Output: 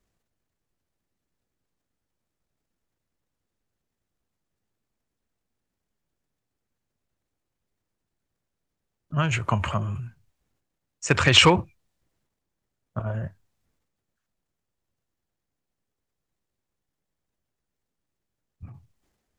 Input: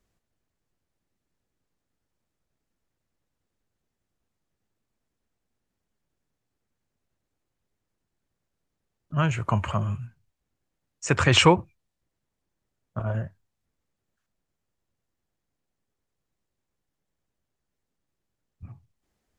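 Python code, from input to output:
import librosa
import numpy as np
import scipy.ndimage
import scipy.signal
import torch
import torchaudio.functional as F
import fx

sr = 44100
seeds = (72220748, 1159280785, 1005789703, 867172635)

y = np.clip(x, -10.0 ** (-6.5 / 20.0), 10.0 ** (-6.5 / 20.0))
y = fx.transient(y, sr, attack_db=4, sustain_db=8)
y = fx.dynamic_eq(y, sr, hz=3500.0, q=0.8, threshold_db=-33.0, ratio=4.0, max_db=6)
y = y * 10.0 ** (-2.5 / 20.0)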